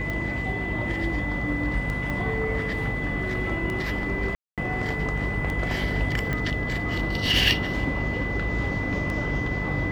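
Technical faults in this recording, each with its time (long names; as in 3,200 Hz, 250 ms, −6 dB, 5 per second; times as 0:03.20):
mains hum 50 Hz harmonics 6 −32 dBFS
scratch tick 33 1/3 rpm −18 dBFS
whistle 2,000 Hz −30 dBFS
0:02.10: click −18 dBFS
0:04.35–0:04.58: drop-out 227 ms
0:06.33: click −15 dBFS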